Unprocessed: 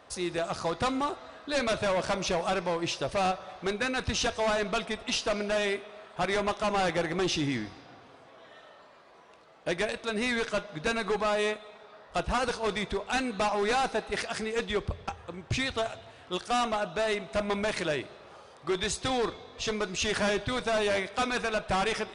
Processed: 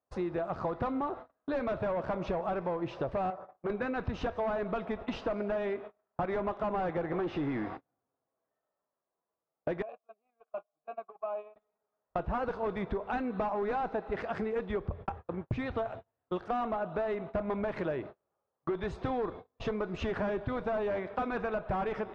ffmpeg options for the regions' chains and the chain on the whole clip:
-filter_complex "[0:a]asettb=1/sr,asplit=3[a][b][c];[a]atrim=end=3.304[d];[b]atrim=start=3.3:end=3.7,asetpts=PTS-STARTPTS,afade=t=in:d=0.004:c=qsin,afade=t=out:st=0.396:d=0.004:c=qsin,equalizer=f=3.2k:w=0.92:g=-11.5,asoftclip=type=hard:threshold=-31dB,highpass=f=230:p=1[e];[c]atrim=start=3.696[f];[d][e]acrossfade=d=0.004:c1=hsin:c2=qsin[g];[g][f]acrossfade=d=0.004:c1=qsin:c2=hsin,asettb=1/sr,asplit=3[h][i][j];[h]atrim=end=7.124[k];[i]atrim=start=7.12:end=7.77,asetpts=PTS-STARTPTS,afade=t=in:d=0.004:c=qsin,afade=t=out:st=0.646:d=0.004:c=qsin,acrusher=bits=5:mode=log:mix=0:aa=0.000001,asplit=2[l][m];[m]highpass=f=720:p=1,volume=16dB,asoftclip=type=tanh:threshold=-20.5dB[n];[l][n]amix=inputs=2:normalize=0,lowpass=f=2.5k:p=1,volume=-6dB[o];[j]atrim=start=7.766[p];[k][o]acrossfade=d=0.004:c1=hsin:c2=qsin[q];[q][p]acrossfade=d=0.004:c1=qsin:c2=hsin,asettb=1/sr,asplit=3[r][s][t];[r]atrim=end=9.824[u];[s]atrim=start=9.82:end=11.56,asetpts=PTS-STARTPTS,afade=t=in:d=0.004:c=qsin,afade=t=out:st=1.736:d=0.004:c=qsin,acompressor=threshold=-29dB:ratio=3:attack=3.2:release=140:knee=1:detection=peak,asplit=3[v][w][x];[v]bandpass=f=730:t=q:w=8,volume=0dB[y];[w]bandpass=f=1.09k:t=q:w=8,volume=-6dB[z];[x]bandpass=f=2.44k:t=q:w=8,volume=-9dB[aa];[y][z][aa]amix=inputs=3:normalize=0[ab];[t]atrim=start=11.556[ac];[u][ab]acrossfade=d=0.004:c1=hsin:c2=qsin[ad];[ad][ac]acrossfade=d=0.004:c1=qsin:c2=hsin,agate=range=-38dB:threshold=-41dB:ratio=16:detection=peak,lowpass=1.2k,acompressor=threshold=-36dB:ratio=6,volume=5.5dB"

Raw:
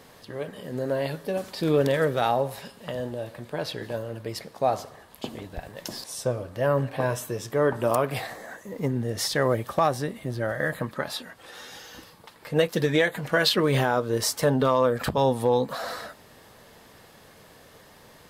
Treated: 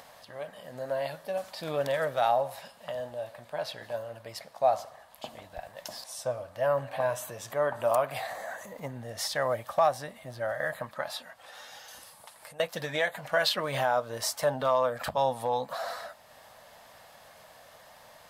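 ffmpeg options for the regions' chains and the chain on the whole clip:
-filter_complex "[0:a]asettb=1/sr,asplit=3[a][b][c];[a]atrim=end=6.784[d];[b]atrim=start=6.78:end=9.02,asetpts=PTS-STARTPTS,afade=t=in:d=0.004:c=qsin,afade=t=out:st=2.236:d=0.004:c=qsin,acompressor=mode=upward:threshold=-27dB:ratio=2.5:attack=3.2:release=140:knee=2.83:detection=peak,bandreject=f=5.3k:w=12[e];[c]atrim=start=9.016[f];[d][e]acrossfade=d=0.004:c1=hsin:c2=qsin[g];[g][f]acrossfade=d=0.004:c1=qsin:c2=hsin,asettb=1/sr,asplit=3[h][i][j];[h]atrim=end=11.884[k];[i]atrim=start=11.88:end=12.6,asetpts=PTS-STARTPTS,afade=t=in:d=0.004:c=qsin,afade=t=out:st=0.716:d=0.004:c=qsin,equalizer=f=9.7k:t=o:w=0.87:g=15,acompressor=threshold=-38dB:ratio=6:attack=3.2:release=140:knee=1:detection=peak[l];[j]atrim=start=12.596[m];[k][l]acrossfade=d=0.004:c1=hsin:c2=qsin[n];[n][m]acrossfade=d=0.004:c1=qsin:c2=hsin,lowshelf=f=500:t=q:w=3:g=-7.5,acompressor=mode=upward:threshold=-42dB:ratio=2.5,volume=-5dB"

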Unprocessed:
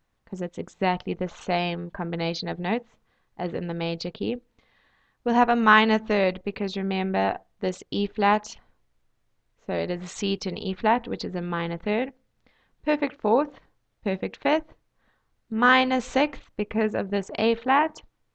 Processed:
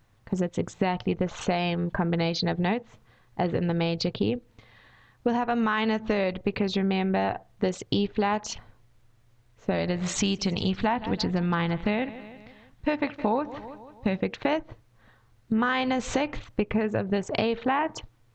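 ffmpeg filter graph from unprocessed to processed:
-filter_complex "[0:a]asettb=1/sr,asplit=3[a][b][c];[a]atrim=end=9.714[d];[b]atrim=start=9.71:end=14.18,asetpts=PTS-STARTPTS,afade=t=in:d=0.004:c=qsin,afade=t=out:st=4.466:d=0.004:c=qsin,equalizer=f=430:t=o:w=0.65:g=-6.5,aecho=1:1:163|326|489|652:0.0891|0.0463|0.0241|0.0125,atrim=end_sample=197127[e];[c]atrim=start=14.176[f];[d][e]acrossfade=d=0.004:c1=hsin:c2=qsin[g];[g][f]acrossfade=d=0.004:c1=qsin:c2=hsin,alimiter=limit=-14dB:level=0:latency=1:release=144,equalizer=f=110:t=o:w=0.58:g=12,acompressor=threshold=-30dB:ratio=6,volume=8dB"

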